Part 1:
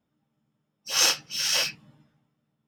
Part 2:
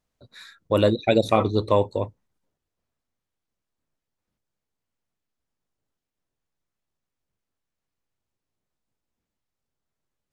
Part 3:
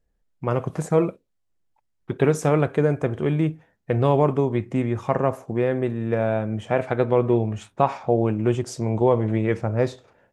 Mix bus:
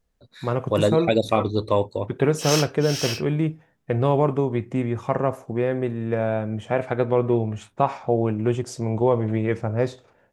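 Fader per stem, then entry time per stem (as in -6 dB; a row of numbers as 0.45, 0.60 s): -4.5, -1.0, -1.0 dB; 1.50, 0.00, 0.00 s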